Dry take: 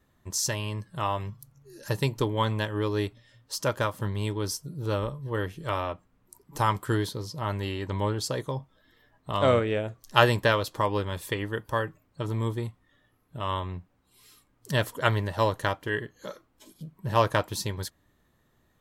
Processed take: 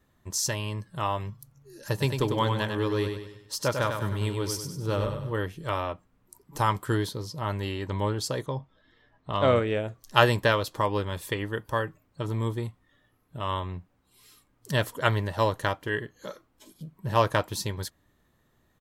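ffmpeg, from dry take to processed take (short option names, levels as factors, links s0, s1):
-filter_complex "[0:a]asplit=3[s0][s1][s2];[s0]afade=t=out:st=2:d=0.02[s3];[s1]aecho=1:1:98|196|294|392|490:0.501|0.221|0.097|0.0427|0.0188,afade=t=in:st=2:d=0.02,afade=t=out:st=5.32:d=0.02[s4];[s2]afade=t=in:st=5.32:d=0.02[s5];[s3][s4][s5]amix=inputs=3:normalize=0,asettb=1/sr,asplit=3[s6][s7][s8];[s6]atrim=end=8.464[s9];[s7]atrim=start=8.46:end=9.56,asetpts=PTS-STARTPTS,afade=t=in:d=0.004:c=qsin,afade=t=out:st=1.096:d=0.004:c=qsin,lowpass=4900[s10];[s8]atrim=start=9.556[s11];[s9][s10]acrossfade=d=0.004:c1=hsin:c2=qsin[s12];[s12][s11]acrossfade=d=0.004:c1=qsin:c2=hsin"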